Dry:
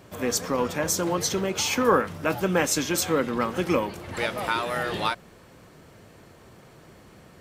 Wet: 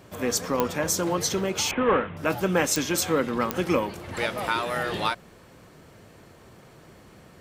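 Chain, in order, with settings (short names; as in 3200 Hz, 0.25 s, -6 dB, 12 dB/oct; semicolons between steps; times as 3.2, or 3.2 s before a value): 1.71–2.17 CVSD 16 kbps; pops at 0.6/2.76/3.51, -8 dBFS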